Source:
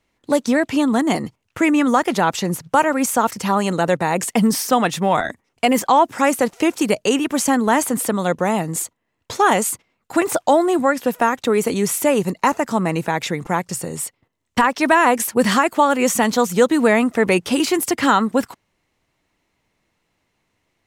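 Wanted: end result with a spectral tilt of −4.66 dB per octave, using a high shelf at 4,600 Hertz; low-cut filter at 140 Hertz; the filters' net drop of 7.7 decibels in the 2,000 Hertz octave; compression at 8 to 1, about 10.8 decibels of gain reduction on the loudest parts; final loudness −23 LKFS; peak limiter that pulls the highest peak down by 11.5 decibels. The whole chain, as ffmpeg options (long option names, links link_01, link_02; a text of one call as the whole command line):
ffmpeg -i in.wav -af "highpass=140,equalizer=frequency=2000:width_type=o:gain=-9,highshelf=frequency=4600:gain=-6,acompressor=threshold=-22dB:ratio=8,volume=7.5dB,alimiter=limit=-13.5dB:level=0:latency=1" out.wav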